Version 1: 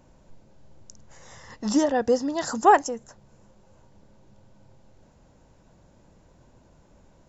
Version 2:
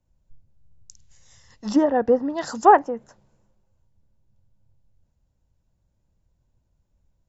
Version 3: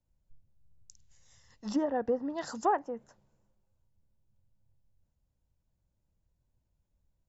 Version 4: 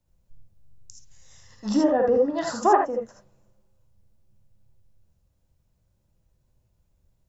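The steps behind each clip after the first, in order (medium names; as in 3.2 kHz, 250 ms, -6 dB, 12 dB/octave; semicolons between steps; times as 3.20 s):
low-pass that closes with the level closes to 1.6 kHz, closed at -19 dBFS; three bands expanded up and down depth 70%; trim -3 dB
compression 2:1, threshold -19 dBFS, peak gain reduction 7 dB; trim -8.5 dB
gated-style reverb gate 100 ms rising, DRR 1 dB; trim +7 dB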